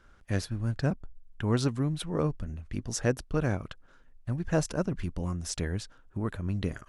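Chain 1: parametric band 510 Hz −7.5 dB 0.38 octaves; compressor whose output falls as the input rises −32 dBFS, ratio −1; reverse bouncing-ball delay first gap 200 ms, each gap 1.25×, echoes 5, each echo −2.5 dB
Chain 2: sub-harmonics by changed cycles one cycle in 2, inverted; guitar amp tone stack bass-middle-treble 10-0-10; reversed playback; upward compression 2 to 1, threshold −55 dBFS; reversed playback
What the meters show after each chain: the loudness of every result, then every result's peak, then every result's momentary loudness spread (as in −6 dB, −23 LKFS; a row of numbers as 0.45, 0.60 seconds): −32.0, −41.5 LKFS; −13.0, −15.0 dBFS; 5, 11 LU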